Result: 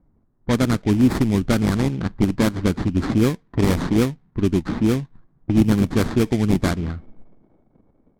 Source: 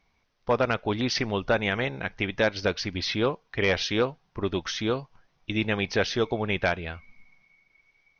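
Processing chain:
sample-rate reduction 2,800 Hz, jitter 20%
low shelf with overshoot 380 Hz +11 dB, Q 1.5
low-pass that shuts in the quiet parts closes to 1,000 Hz, open at −13 dBFS

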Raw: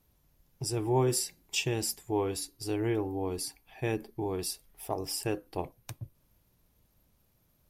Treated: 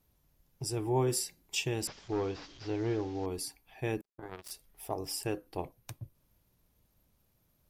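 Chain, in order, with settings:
0:01.87–0:03.26: linear delta modulator 32 kbit/s, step −45 dBFS
0:04.01–0:04.51: power curve on the samples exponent 3
level −2.5 dB

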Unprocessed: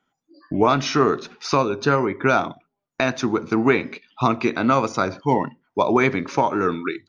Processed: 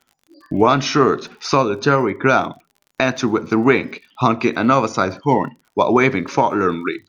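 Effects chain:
surface crackle 42 per second −42 dBFS
level +3.5 dB

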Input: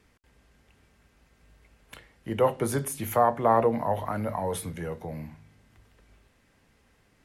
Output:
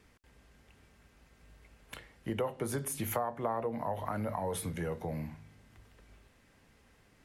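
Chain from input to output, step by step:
downward compressor 6 to 1, threshold −31 dBFS, peak gain reduction 14 dB

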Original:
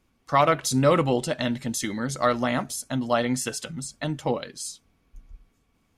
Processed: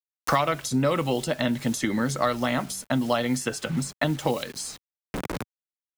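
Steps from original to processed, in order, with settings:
hum removal 94.59 Hz, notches 2
bit reduction 8 bits
multiband upward and downward compressor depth 100%
level −1 dB

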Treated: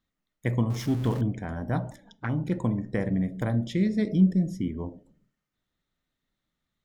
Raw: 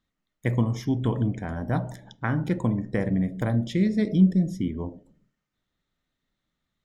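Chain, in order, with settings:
0:00.70–0:01.21: converter with a step at zero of −33 dBFS
0:01.90–0:02.52: flanger swept by the level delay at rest 5.8 ms, full sweep at −22.5 dBFS
0:04.10–0:04.84: parametric band 3,600 Hz −7 dB 0.24 octaves
level −2 dB

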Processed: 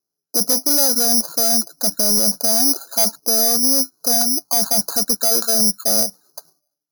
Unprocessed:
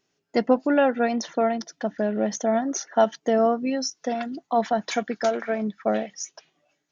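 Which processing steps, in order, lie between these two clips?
noise gate with hold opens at −52 dBFS
Butterworth low-pass 1,500 Hz 96 dB per octave
in parallel at +2 dB: compressor whose output falls as the input rises −26 dBFS, ratio −0.5
on the sum: soft clipping −16.5 dBFS, distortion −13 dB
bad sample-rate conversion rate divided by 8×, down filtered, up zero stuff
level −3.5 dB

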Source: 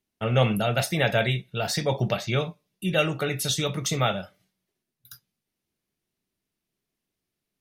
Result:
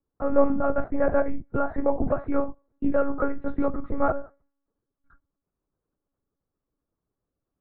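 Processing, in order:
elliptic band-pass filter 130–1,300 Hz, stop band 40 dB
one-pitch LPC vocoder at 8 kHz 280 Hz
0:01.50–0:03.70: multiband upward and downward compressor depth 70%
level +4 dB

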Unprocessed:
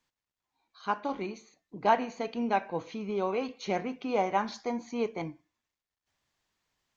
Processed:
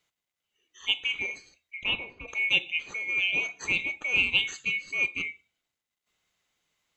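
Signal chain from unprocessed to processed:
neighbouring bands swapped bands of 2,000 Hz
0:01.83–0:02.27: low-pass filter 2,000 Hz → 1,000 Hz 12 dB per octave
level +3 dB

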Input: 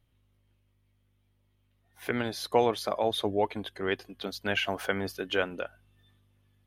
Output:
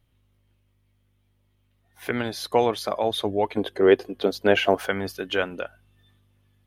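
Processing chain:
0:03.57–0:04.75: parametric band 440 Hz +13 dB 1.8 octaves
level +3.5 dB

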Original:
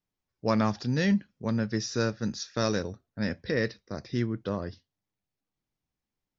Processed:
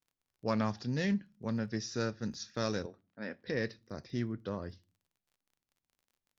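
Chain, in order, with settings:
surface crackle 29 per second −50 dBFS
0:02.86–0:03.47: band-pass filter 300–3,000 Hz
on a send at −20 dB: convolution reverb RT60 0.35 s, pre-delay 4 ms
on the sum: highs frequency-modulated by the lows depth 0.1 ms
level −6.5 dB

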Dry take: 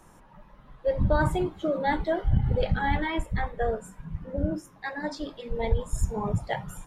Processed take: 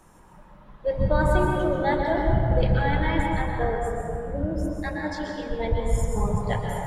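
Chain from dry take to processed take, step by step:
dense smooth reverb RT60 2.5 s, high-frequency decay 0.4×, pre-delay 110 ms, DRR 0 dB

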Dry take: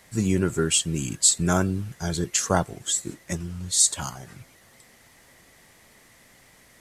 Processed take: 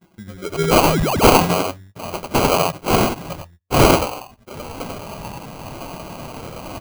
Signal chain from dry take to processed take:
spike at every zero crossing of −17.5 dBFS
noise reduction from a noise print of the clip's start 26 dB
low-pass that shuts in the quiet parts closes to 2,500 Hz, open at −19.5 dBFS
noise gate −48 dBFS, range −39 dB
parametric band 75 Hz +15 dB 1 octave
single-tap delay 92 ms −3.5 dB
sound drawn into the spectrogram rise, 0:00.68–0:01.38, 440–8,500 Hz −25 dBFS
sample-rate reduction 1,800 Hz, jitter 0%
level +5.5 dB

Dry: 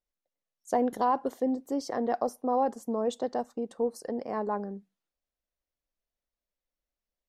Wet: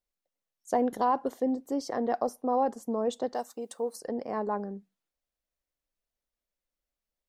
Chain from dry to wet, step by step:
0:03.34–0:03.96: RIAA equalisation recording

